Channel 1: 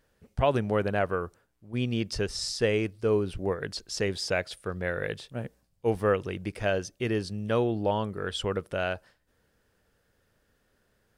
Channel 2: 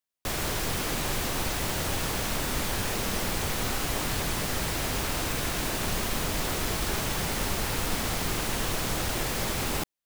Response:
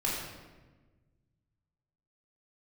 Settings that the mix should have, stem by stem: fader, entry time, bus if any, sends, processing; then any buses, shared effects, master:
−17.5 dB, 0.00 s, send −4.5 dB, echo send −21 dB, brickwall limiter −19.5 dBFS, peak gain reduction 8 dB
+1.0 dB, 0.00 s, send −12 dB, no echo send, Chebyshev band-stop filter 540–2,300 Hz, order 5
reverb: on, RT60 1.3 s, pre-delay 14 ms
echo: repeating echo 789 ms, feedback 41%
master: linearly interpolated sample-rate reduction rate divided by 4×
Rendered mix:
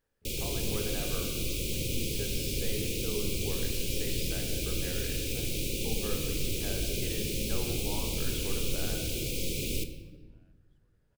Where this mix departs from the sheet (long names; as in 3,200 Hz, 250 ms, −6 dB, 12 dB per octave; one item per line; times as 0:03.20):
stem 2 +1.0 dB → −5.0 dB
master: missing linearly interpolated sample-rate reduction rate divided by 4×